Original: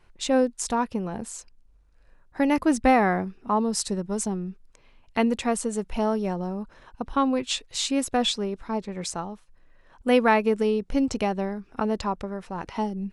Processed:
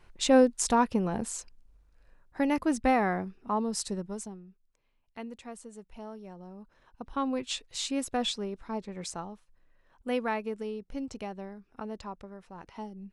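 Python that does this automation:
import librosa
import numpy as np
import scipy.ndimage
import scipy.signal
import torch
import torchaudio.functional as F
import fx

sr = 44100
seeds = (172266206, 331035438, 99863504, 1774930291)

y = fx.gain(x, sr, db=fx.line((1.33, 1.0), (2.64, -6.0), (4.03, -6.0), (4.44, -18.5), (6.26, -18.5), (7.36, -6.5), (9.27, -6.5), (10.61, -13.0)))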